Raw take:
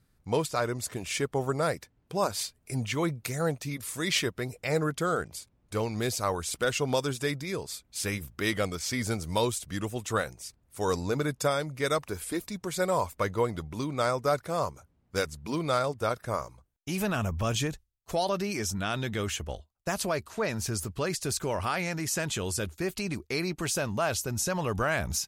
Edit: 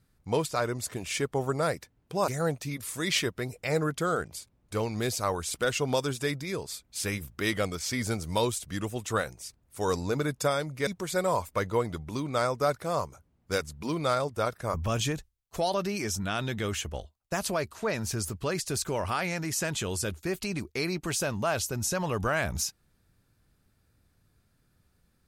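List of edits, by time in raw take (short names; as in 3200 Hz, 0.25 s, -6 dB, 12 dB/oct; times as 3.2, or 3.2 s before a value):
2.28–3.28 cut
11.87–12.51 cut
16.38–17.29 cut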